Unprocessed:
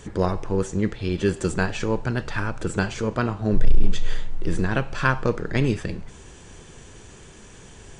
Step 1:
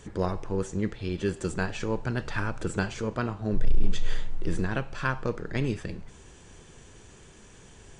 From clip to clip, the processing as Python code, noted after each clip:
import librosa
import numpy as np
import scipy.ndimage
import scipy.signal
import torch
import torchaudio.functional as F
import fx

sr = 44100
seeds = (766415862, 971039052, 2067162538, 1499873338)

y = fx.rider(x, sr, range_db=3, speed_s=0.5)
y = y * librosa.db_to_amplitude(-5.5)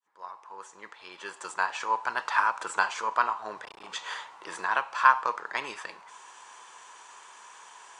y = fx.fade_in_head(x, sr, length_s=2.2)
y = fx.highpass_res(y, sr, hz=990.0, q=4.9)
y = y * librosa.db_to_amplitude(2.5)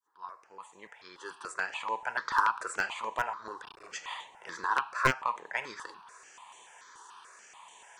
y = np.minimum(x, 2.0 * 10.0 ** (-13.0 / 20.0) - x)
y = fx.phaser_held(y, sr, hz=6.9, low_hz=640.0, high_hz=5000.0)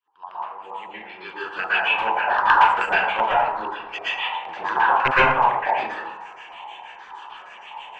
y = fx.filter_lfo_lowpass(x, sr, shape='square', hz=6.4, low_hz=800.0, high_hz=2800.0, q=5.8)
y = fx.rev_plate(y, sr, seeds[0], rt60_s=0.79, hf_ratio=0.45, predelay_ms=105, drr_db=-9.0)